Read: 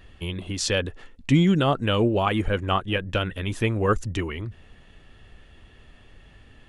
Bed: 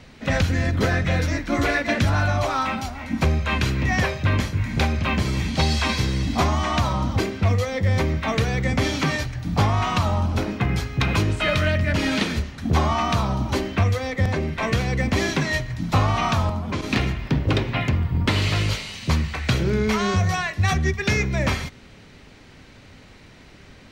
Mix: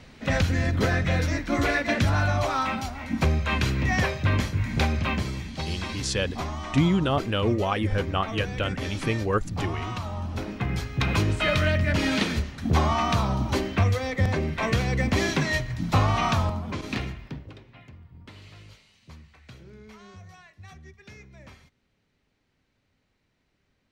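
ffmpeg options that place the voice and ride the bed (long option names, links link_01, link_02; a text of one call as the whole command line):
ffmpeg -i stem1.wav -i stem2.wav -filter_complex "[0:a]adelay=5450,volume=-3dB[link_01];[1:a]volume=7dB,afade=type=out:start_time=5:duration=0.45:silence=0.354813,afade=type=in:start_time=10.1:duration=1.21:silence=0.334965,afade=type=out:start_time=16.31:duration=1.22:silence=0.0630957[link_02];[link_01][link_02]amix=inputs=2:normalize=0" out.wav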